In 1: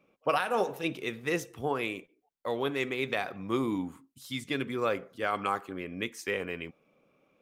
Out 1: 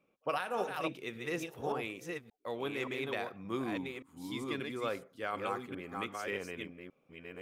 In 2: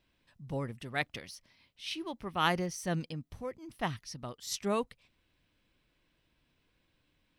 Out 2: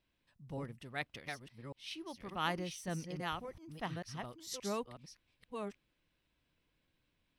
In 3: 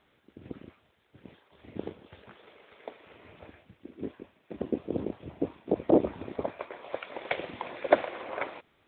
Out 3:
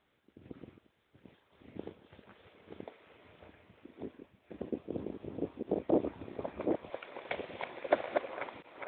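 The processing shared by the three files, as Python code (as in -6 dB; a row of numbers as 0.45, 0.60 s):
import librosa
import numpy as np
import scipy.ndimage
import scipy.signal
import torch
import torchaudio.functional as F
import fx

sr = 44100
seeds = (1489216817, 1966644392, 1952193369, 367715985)

y = fx.reverse_delay(x, sr, ms=575, wet_db=-4.0)
y = F.gain(torch.from_numpy(y), -7.0).numpy()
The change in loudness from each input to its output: -6.0, -6.5, -5.5 LU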